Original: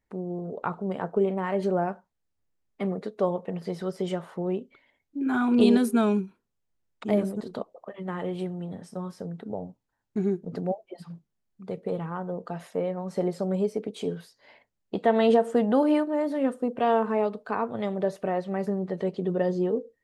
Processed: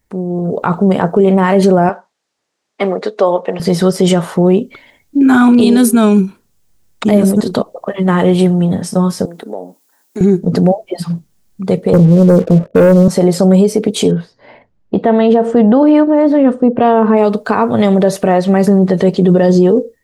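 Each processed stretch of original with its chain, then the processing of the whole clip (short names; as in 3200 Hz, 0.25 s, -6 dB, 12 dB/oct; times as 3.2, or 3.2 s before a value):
1.89–3.6 HPF 450 Hz + air absorption 93 m
9.25–10.21 HPF 280 Hz 24 dB/oct + high shelf 7300 Hz +11.5 dB + compressor 1.5:1, threshold -57 dBFS
11.93–13.08 steep low-pass 620 Hz 96 dB/oct + sample leveller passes 2
14.11–17.17 tape spacing loss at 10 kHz 25 dB + mismatched tape noise reduction decoder only
whole clip: tone controls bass +4 dB, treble +8 dB; AGC gain up to 9 dB; maximiser +12 dB; gain -1 dB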